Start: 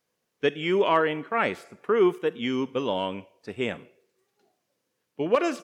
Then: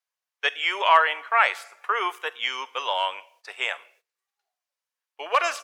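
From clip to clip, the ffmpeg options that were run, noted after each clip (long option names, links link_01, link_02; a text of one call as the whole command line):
ffmpeg -i in.wav -af "agate=range=-17dB:threshold=-58dB:ratio=16:detection=peak,highpass=frequency=780:width=0.5412,highpass=frequency=780:width=1.3066,volume=7.5dB" out.wav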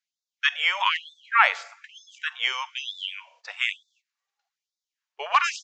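ffmpeg -i in.wav -af "aresample=16000,aresample=44100,afftfilt=real='re*gte(b*sr/1024,380*pow(3500/380,0.5+0.5*sin(2*PI*1.1*pts/sr)))':imag='im*gte(b*sr/1024,380*pow(3500/380,0.5+0.5*sin(2*PI*1.1*pts/sr)))':win_size=1024:overlap=0.75,volume=2dB" out.wav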